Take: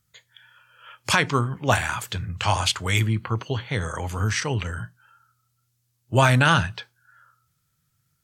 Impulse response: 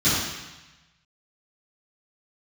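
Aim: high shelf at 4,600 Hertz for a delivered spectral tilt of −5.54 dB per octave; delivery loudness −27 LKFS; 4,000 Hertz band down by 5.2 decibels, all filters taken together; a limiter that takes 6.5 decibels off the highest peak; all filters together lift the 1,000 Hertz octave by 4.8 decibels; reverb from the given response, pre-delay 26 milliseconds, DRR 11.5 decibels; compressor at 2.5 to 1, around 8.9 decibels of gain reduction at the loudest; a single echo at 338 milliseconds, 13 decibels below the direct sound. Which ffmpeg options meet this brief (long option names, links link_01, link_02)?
-filter_complex "[0:a]equalizer=frequency=1000:width_type=o:gain=6.5,equalizer=frequency=4000:width_type=o:gain=-5,highshelf=frequency=4600:gain=-5.5,acompressor=threshold=-24dB:ratio=2.5,alimiter=limit=-17.5dB:level=0:latency=1,aecho=1:1:338:0.224,asplit=2[link_01][link_02];[1:a]atrim=start_sample=2205,adelay=26[link_03];[link_02][link_03]afir=irnorm=-1:irlink=0,volume=-28.5dB[link_04];[link_01][link_04]amix=inputs=2:normalize=0,volume=2dB"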